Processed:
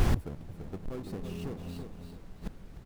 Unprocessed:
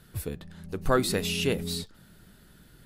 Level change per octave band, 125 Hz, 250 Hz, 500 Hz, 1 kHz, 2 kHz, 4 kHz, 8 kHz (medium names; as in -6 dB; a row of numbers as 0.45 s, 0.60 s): -0.5 dB, -6.0 dB, -12.0 dB, -10.5 dB, -12.5 dB, -17.0 dB, -16.0 dB